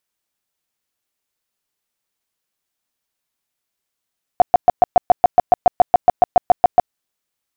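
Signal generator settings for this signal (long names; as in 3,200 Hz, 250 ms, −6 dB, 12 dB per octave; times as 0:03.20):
tone bursts 717 Hz, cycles 13, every 0.14 s, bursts 18, −4.5 dBFS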